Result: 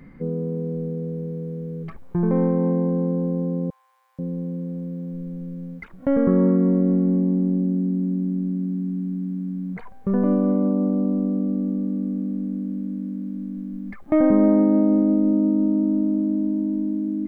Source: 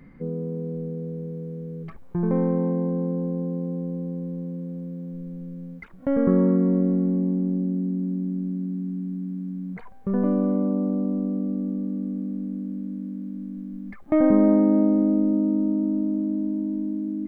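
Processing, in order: 3.70–4.19 s: steep high-pass 940 Hz 48 dB/octave; in parallel at -1.5 dB: peak limiter -16 dBFS, peak gain reduction 8 dB; on the sum: trim -2 dB

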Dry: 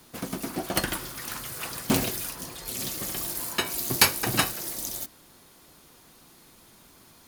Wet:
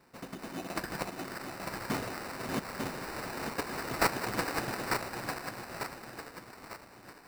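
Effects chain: backward echo that repeats 449 ms, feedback 65%, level -1 dB; sample-rate reducer 3.3 kHz, jitter 0%; bass shelf 96 Hz -7 dB; trim -9 dB

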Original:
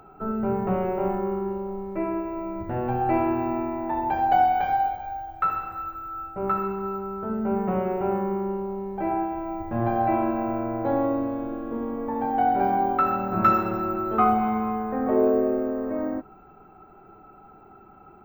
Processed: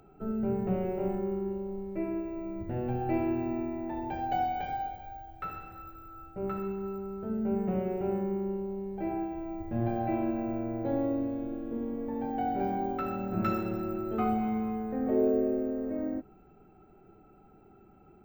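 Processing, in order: peaking EQ 1.1 kHz -14.5 dB 1.2 oct; trim -3 dB

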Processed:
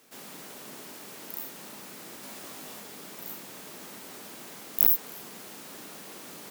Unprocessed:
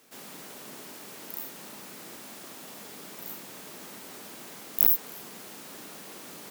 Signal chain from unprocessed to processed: 2.21–2.80 s: doubling 19 ms -3 dB

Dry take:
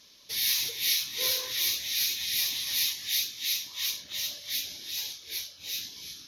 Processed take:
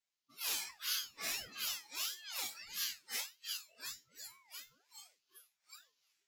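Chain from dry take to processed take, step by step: spectral noise reduction 27 dB; chord resonator G2 major, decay 0.24 s; ring modulator with a swept carrier 1.2 kHz, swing 40%, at 1.6 Hz; trim +5 dB

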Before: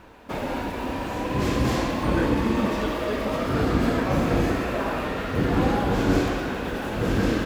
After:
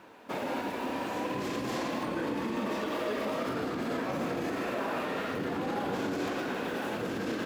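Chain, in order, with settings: peak limiter -19.5 dBFS, peak gain reduction 10 dB; high-pass 200 Hz 12 dB/octave; trim -3.5 dB

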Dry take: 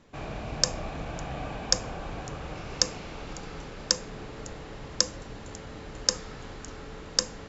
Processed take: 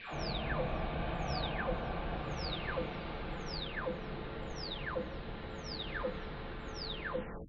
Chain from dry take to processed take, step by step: delay that grows with frequency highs early, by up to 609 ms; elliptic low-pass 3.9 kHz, stop band 60 dB; trim +1 dB

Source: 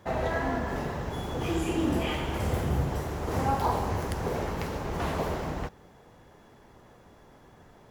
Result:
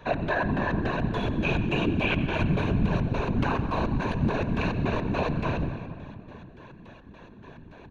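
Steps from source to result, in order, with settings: rippled EQ curve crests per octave 1.5, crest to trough 15 dB; peak limiter -22 dBFS, peak gain reduction 9 dB; LFO low-pass square 3.5 Hz 200–3100 Hz; speakerphone echo 90 ms, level -14 dB; on a send at -10 dB: reverberation RT60 2.6 s, pre-delay 115 ms; on the sum: whisper effect; trim +3.5 dB

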